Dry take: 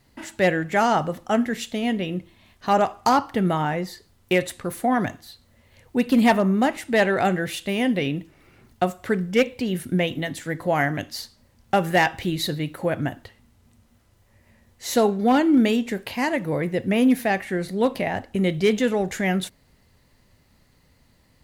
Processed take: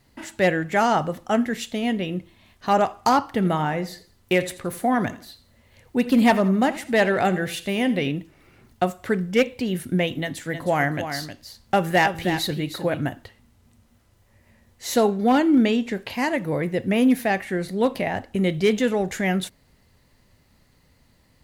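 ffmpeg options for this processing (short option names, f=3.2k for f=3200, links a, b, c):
-filter_complex "[0:a]asplit=3[a][b][c];[a]afade=t=out:st=3.38:d=0.02[d];[b]aecho=1:1:84|168|252:0.141|0.0494|0.0173,afade=t=in:st=3.38:d=0.02,afade=t=out:st=8.11:d=0.02[e];[c]afade=t=in:st=8.11:d=0.02[f];[d][e][f]amix=inputs=3:normalize=0,asplit=3[g][h][i];[g]afade=t=out:st=10.5:d=0.02[j];[h]aecho=1:1:313:0.355,afade=t=in:st=10.5:d=0.02,afade=t=out:st=13.08:d=0.02[k];[i]afade=t=in:st=13.08:d=0.02[l];[j][k][l]amix=inputs=3:normalize=0,asettb=1/sr,asplit=3[m][n][o];[m]atrim=end=15.554[p];[n]atrim=start=15.55:end=16.1,asetpts=PTS-STARTPTS,afade=t=in:d=0.004:c=qsin,afade=t=out:st=0.546:d=0.004:c=qsin,acrossover=split=7000[q][r];[r]acompressor=threshold=-59dB:ratio=4:attack=1:release=60[s];[q][s]amix=inputs=2:normalize=0[t];[o]atrim=start=16.096[u];[p][t]acrossfade=d=0.004:c1=hsin:c2=qsin[v];[v][u]acrossfade=d=0.004:c1=qsin:c2=hsin"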